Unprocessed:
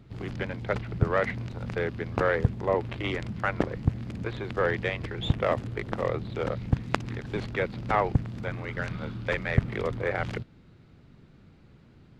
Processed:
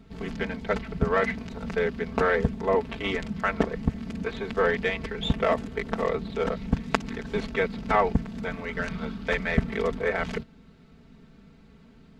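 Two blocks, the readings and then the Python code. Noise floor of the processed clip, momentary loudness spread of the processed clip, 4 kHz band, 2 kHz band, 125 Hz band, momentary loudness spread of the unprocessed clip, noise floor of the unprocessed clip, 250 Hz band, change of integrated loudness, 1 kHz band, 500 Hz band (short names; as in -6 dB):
-53 dBFS, 8 LU, +3.0 dB, +2.5 dB, -4.0 dB, 8 LU, -55 dBFS, +3.5 dB, +2.0 dB, +2.5 dB, +3.0 dB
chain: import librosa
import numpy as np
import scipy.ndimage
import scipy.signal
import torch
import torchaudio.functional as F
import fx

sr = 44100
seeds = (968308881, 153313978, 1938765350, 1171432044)

y = fx.peak_eq(x, sr, hz=6700.0, db=2.0, octaves=0.77)
y = y + 0.97 * np.pad(y, (int(4.5 * sr / 1000.0), 0))[:len(y)]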